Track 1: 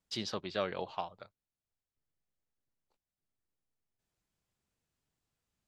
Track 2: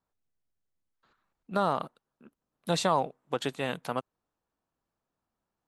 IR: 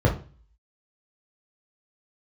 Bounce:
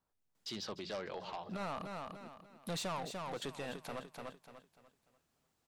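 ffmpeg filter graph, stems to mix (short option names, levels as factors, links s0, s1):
-filter_complex "[0:a]highpass=100,bandreject=f=60:t=h:w=6,bandreject=f=120:t=h:w=6,bandreject=f=180:t=h:w=6,aeval=exprs='0.112*sin(PI/2*2.51*val(0)/0.112)':c=same,adelay=350,volume=0.473,asplit=2[s0][s1];[s1]volume=0.0944[s2];[1:a]asoftclip=type=tanh:threshold=0.0335,volume=0.944,asplit=2[s3][s4];[s4]volume=0.355[s5];[s2][s5]amix=inputs=2:normalize=0,aecho=0:1:295|590|885|1180|1475:1|0.33|0.109|0.0359|0.0119[s6];[s0][s3][s6]amix=inputs=3:normalize=0,alimiter=level_in=3.55:limit=0.0631:level=0:latency=1:release=117,volume=0.282"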